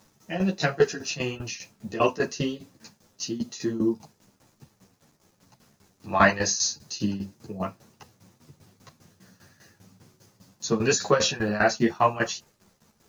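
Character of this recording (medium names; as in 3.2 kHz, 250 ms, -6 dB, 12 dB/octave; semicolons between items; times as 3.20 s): a quantiser's noise floor 10-bit, dither none; tremolo saw down 5 Hz, depth 85%; a shimmering, thickened sound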